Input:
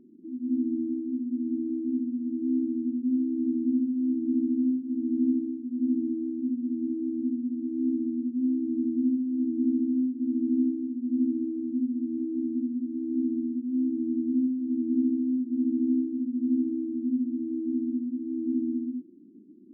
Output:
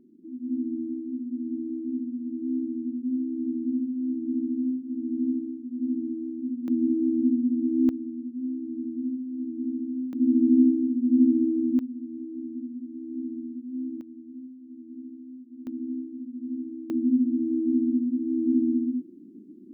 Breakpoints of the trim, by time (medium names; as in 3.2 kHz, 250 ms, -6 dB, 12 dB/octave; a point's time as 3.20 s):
-2 dB
from 6.68 s +6 dB
from 7.89 s -5 dB
from 10.13 s +6.5 dB
from 11.79 s -6 dB
from 14.01 s -16 dB
from 15.67 s -7.5 dB
from 16.90 s +5 dB